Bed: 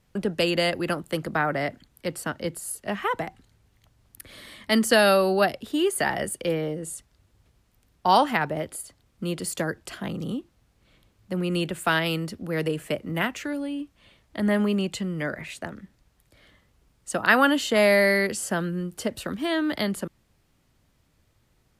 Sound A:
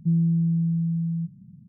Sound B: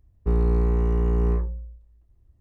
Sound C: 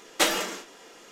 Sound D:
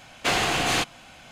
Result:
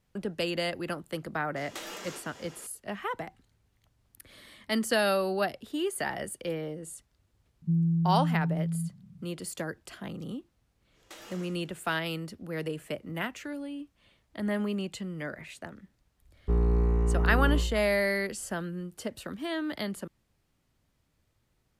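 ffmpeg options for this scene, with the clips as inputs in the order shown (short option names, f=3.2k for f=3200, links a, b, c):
-filter_complex "[3:a]asplit=2[a][b];[0:a]volume=-7.5dB[c];[a]acompressor=threshold=-36dB:ratio=6:attack=3.2:release=140:knee=1:detection=peak[d];[b]acompressor=threshold=-27dB:ratio=6:attack=3.2:release=140:knee=1:detection=peak[e];[d]atrim=end=1.11,asetpts=PTS-STARTPTS,volume=-1.5dB,afade=t=in:d=0.004:c=hsin,afade=t=out:st=1.106:d=0.004:c=hsin,adelay=1560[f];[1:a]atrim=end=1.68,asetpts=PTS-STARTPTS,volume=-4.5dB,afade=t=in:d=0.004:c=hsin,afade=t=out:st=1.676:d=0.004:c=hsin,adelay=336042S[g];[e]atrim=end=1.11,asetpts=PTS-STARTPTS,volume=-16.5dB,afade=t=in:d=0.1,afade=t=out:st=1.01:d=0.1,adelay=10910[h];[2:a]atrim=end=2.4,asetpts=PTS-STARTPTS,volume=-4dB,afade=t=in:d=0.004:c=hsin,afade=t=out:st=2.396:d=0.004:c=hsin,adelay=16220[i];[c][f][g][h][i]amix=inputs=5:normalize=0"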